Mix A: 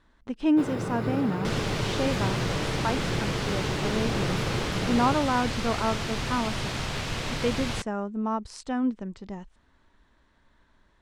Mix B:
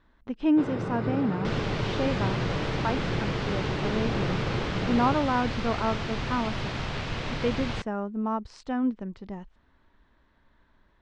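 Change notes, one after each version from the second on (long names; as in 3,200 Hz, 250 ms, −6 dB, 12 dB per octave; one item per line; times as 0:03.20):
master: add high-frequency loss of the air 140 metres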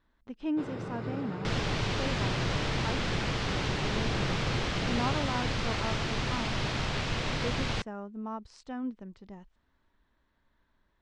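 speech −9.0 dB
first sound −6.5 dB
master: add high-shelf EQ 6,300 Hz +11 dB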